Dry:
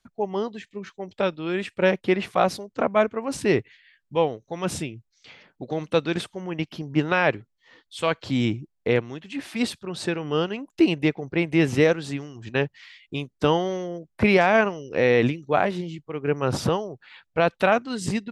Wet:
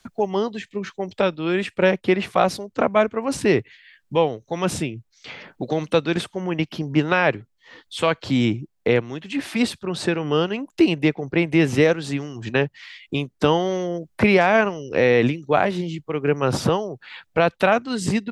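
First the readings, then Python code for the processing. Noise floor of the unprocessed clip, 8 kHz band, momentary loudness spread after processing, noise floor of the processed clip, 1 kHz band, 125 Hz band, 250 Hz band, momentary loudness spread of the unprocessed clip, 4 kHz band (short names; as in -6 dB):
-74 dBFS, +3.0 dB, 11 LU, -68 dBFS, +2.5 dB, +3.0 dB, +3.5 dB, 13 LU, +3.5 dB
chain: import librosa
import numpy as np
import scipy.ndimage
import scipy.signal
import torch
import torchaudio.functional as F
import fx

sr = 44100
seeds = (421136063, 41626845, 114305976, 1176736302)

y = fx.band_squash(x, sr, depth_pct=40)
y = F.gain(torch.from_numpy(y), 3.0).numpy()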